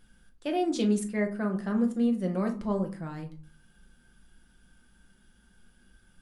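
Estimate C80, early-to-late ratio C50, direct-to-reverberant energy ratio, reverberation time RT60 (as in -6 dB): 17.0 dB, 12.0 dB, 3.0 dB, 0.45 s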